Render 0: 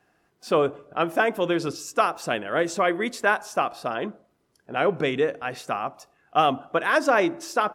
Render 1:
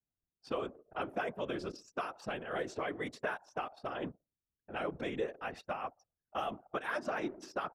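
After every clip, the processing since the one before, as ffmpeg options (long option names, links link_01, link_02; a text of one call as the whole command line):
ffmpeg -i in.wav -filter_complex "[0:a]acrossover=split=2600|5700[link_01][link_02][link_03];[link_01]acompressor=threshold=-27dB:ratio=4[link_04];[link_02]acompressor=threshold=-44dB:ratio=4[link_05];[link_03]acompressor=threshold=-55dB:ratio=4[link_06];[link_04][link_05][link_06]amix=inputs=3:normalize=0,anlmdn=0.251,afftfilt=real='hypot(re,im)*cos(2*PI*random(0))':imag='hypot(re,im)*sin(2*PI*random(1))':win_size=512:overlap=0.75,volume=-2dB" out.wav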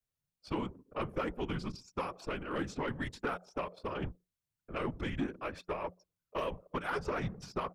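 ffmpeg -i in.wav -af "aeval=exprs='(tanh(22.4*val(0)+0.35)-tanh(0.35))/22.4':channel_layout=same,afreqshift=-180,volume=3dB" out.wav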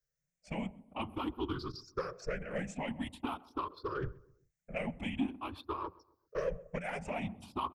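ffmpeg -i in.wav -filter_complex "[0:a]afftfilt=real='re*pow(10,19/40*sin(2*PI*(0.56*log(max(b,1)*sr/1024/100)/log(2)-(0.47)*(pts-256)/sr)))':imag='im*pow(10,19/40*sin(2*PI*(0.56*log(max(b,1)*sr/1024/100)/log(2)-(0.47)*(pts-256)/sr)))':win_size=1024:overlap=0.75,asplit=2[link_01][link_02];[link_02]adelay=130,lowpass=frequency=1200:poles=1,volume=-20.5dB,asplit=2[link_03][link_04];[link_04]adelay=130,lowpass=frequency=1200:poles=1,volume=0.42,asplit=2[link_05][link_06];[link_06]adelay=130,lowpass=frequency=1200:poles=1,volume=0.42[link_07];[link_01][link_03][link_05][link_07]amix=inputs=4:normalize=0,volume=-4.5dB" out.wav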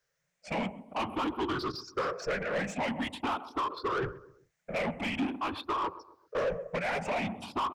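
ffmpeg -i in.wav -filter_complex "[0:a]asplit=2[link_01][link_02];[link_02]highpass=frequency=720:poles=1,volume=24dB,asoftclip=type=tanh:threshold=-22.5dB[link_03];[link_01][link_03]amix=inputs=2:normalize=0,lowpass=frequency=2000:poles=1,volume=-6dB" out.wav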